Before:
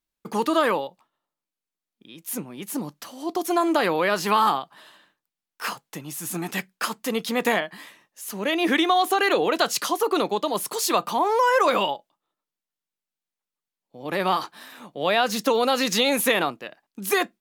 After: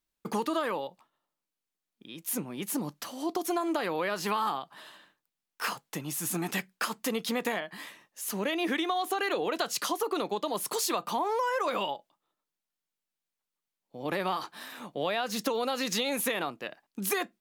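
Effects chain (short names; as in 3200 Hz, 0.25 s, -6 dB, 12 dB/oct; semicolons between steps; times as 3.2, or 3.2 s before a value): compressor 4:1, threshold -28 dBFS, peak gain reduction 11 dB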